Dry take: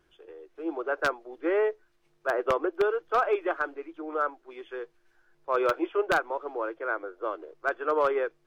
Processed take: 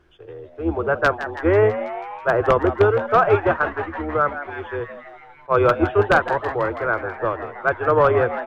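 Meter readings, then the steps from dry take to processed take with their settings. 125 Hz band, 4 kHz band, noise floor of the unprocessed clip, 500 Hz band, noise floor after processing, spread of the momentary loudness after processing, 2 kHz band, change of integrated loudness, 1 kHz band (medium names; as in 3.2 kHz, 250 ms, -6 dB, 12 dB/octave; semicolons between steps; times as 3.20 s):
no reading, +6.0 dB, -69 dBFS, +9.0 dB, -46 dBFS, 13 LU, +9.0 dB, +9.0 dB, +9.5 dB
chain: octave divider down 2 oct, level -2 dB; treble shelf 5.1 kHz -12 dB; on a send: frequency-shifting echo 163 ms, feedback 65%, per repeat +130 Hz, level -12 dB; on the sum: attacks held to a fixed rise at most 580 dB/s; trim +9 dB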